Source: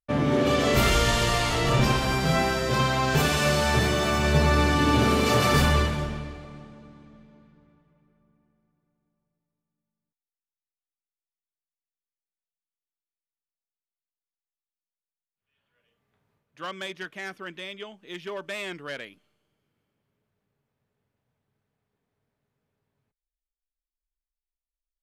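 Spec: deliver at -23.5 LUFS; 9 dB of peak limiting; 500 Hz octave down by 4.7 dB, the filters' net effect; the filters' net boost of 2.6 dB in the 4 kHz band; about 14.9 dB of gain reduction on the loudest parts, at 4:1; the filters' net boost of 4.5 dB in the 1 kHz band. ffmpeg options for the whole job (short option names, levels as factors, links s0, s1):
-af "equalizer=f=500:t=o:g=-8.5,equalizer=f=1000:t=o:g=7.5,equalizer=f=4000:t=o:g=3,acompressor=threshold=0.0178:ratio=4,volume=7.5,alimiter=limit=0.188:level=0:latency=1"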